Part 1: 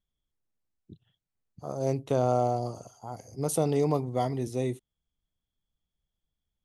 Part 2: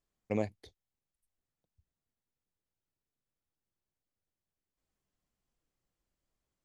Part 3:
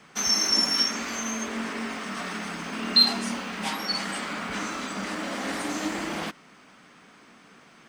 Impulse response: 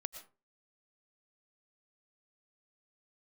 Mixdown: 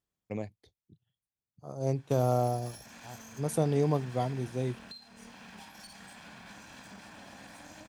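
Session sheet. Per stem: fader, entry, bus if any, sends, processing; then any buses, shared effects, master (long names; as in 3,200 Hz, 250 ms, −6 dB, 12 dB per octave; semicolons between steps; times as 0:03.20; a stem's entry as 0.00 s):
−2.0 dB, 0.00 s, no send, expander for the loud parts 1.5 to 1, over −45 dBFS
−2.5 dB, 0.00 s, no send, automatic ducking −8 dB, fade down 1.00 s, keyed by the first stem
−11.5 dB, 1.95 s, no send, lower of the sound and its delayed copy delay 1.2 ms; downward compressor 12 to 1, threshold −35 dBFS, peak gain reduction 21.5 dB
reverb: not used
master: high-pass filter 41 Hz; parametric band 130 Hz +5 dB 1.1 octaves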